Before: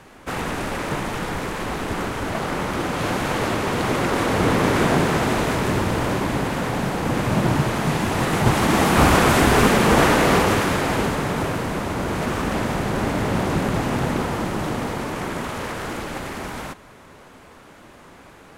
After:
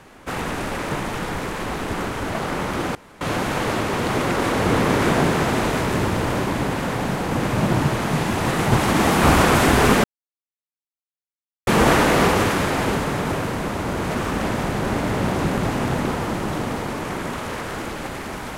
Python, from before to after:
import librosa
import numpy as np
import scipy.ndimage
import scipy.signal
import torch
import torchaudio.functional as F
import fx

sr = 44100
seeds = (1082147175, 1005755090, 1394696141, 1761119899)

y = fx.edit(x, sr, fx.insert_room_tone(at_s=2.95, length_s=0.26),
    fx.insert_silence(at_s=9.78, length_s=1.63), tone=tone)